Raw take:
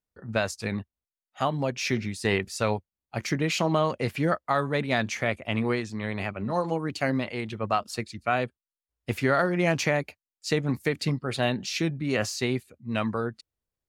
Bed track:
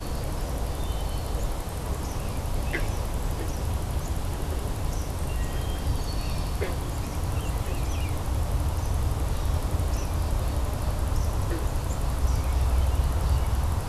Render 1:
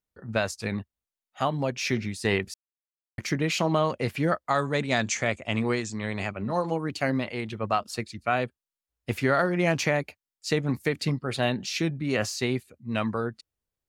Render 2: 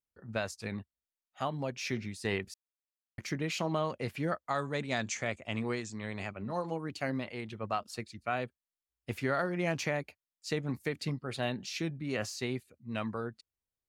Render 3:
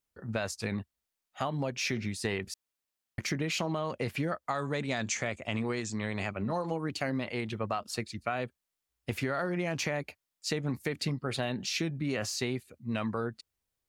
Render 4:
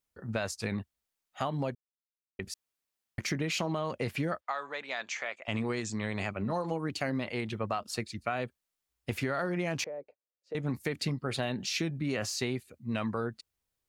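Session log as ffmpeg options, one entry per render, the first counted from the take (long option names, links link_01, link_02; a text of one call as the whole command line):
ffmpeg -i in.wav -filter_complex "[0:a]asettb=1/sr,asplit=3[link_01][link_02][link_03];[link_01]atrim=end=4.484[link_04];[link_02]atrim=start=4.48:end=6.32,asetpts=PTS-STARTPTS,afade=type=in:duration=0.004:curve=qsin,afade=type=out:start_time=1.836:duration=0.004:curve=qsin,lowpass=frequency=7400:width_type=q:width=4.9[link_05];[link_03]atrim=start=6.316[link_06];[link_04][link_05]acrossfade=duration=0.004:curve1=hsin:curve2=qsin[link_07];[link_07][link_06]acrossfade=duration=0.004:curve1=qsin:curve2=hsin,asplit=3[link_08][link_09][link_10];[link_08]atrim=end=2.54,asetpts=PTS-STARTPTS,afade=type=out:start_time=2.536:duration=0.004:curve=hsin[link_11];[link_09]atrim=start=2.54:end=3.18,asetpts=PTS-STARTPTS,volume=0[link_12];[link_10]atrim=start=3.18,asetpts=PTS-STARTPTS,afade=type=in:duration=0.004:curve=hsin[link_13];[link_11][link_12][link_13]concat=n=3:v=0:a=1" out.wav
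ffmpeg -i in.wav -af "volume=-8dB" out.wav
ffmpeg -i in.wav -filter_complex "[0:a]asplit=2[link_01][link_02];[link_02]alimiter=level_in=2dB:limit=-24dB:level=0:latency=1:release=24,volume=-2dB,volume=2.5dB[link_03];[link_01][link_03]amix=inputs=2:normalize=0,acompressor=threshold=-28dB:ratio=6" out.wav
ffmpeg -i in.wav -filter_complex "[0:a]asplit=3[link_01][link_02][link_03];[link_01]afade=type=out:start_time=4.4:duration=0.02[link_04];[link_02]highpass=710,lowpass=4000,afade=type=in:start_time=4.4:duration=0.02,afade=type=out:start_time=5.47:duration=0.02[link_05];[link_03]afade=type=in:start_time=5.47:duration=0.02[link_06];[link_04][link_05][link_06]amix=inputs=3:normalize=0,asettb=1/sr,asplit=3[link_07][link_08][link_09];[link_07]atrim=end=9.844[link_10];[link_08]atrim=start=9.84:end=10.55,asetpts=PTS-STARTPTS,afade=type=in:duration=0.004:curve=qsin,afade=type=out:start_time=0.706:duration=0.004:curve=qsin,bandpass=frequency=510:width_type=q:width=4.5[link_11];[link_09]atrim=start=10.546[link_12];[link_10][link_11]acrossfade=duration=0.004:curve1=hsin:curve2=qsin[link_13];[link_13][link_12]acrossfade=duration=0.004:curve1=qsin:curve2=hsin,asplit=3[link_14][link_15][link_16];[link_14]atrim=end=1.75,asetpts=PTS-STARTPTS,afade=type=out:start_time=1.746:duration=0.004:curve=hsin[link_17];[link_15]atrim=start=1.75:end=2.39,asetpts=PTS-STARTPTS,volume=0[link_18];[link_16]atrim=start=2.39,asetpts=PTS-STARTPTS,afade=type=in:duration=0.004:curve=hsin[link_19];[link_17][link_18][link_19]concat=n=3:v=0:a=1" out.wav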